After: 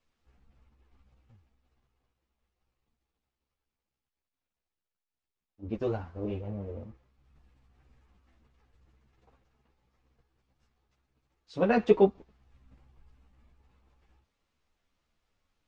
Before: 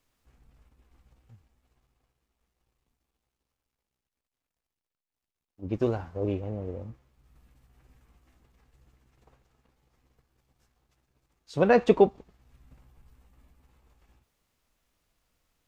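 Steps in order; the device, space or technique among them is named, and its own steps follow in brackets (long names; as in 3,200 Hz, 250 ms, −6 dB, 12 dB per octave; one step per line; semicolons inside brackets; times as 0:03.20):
string-machine ensemble chorus (string-ensemble chorus; low-pass filter 5,300 Hz 12 dB per octave)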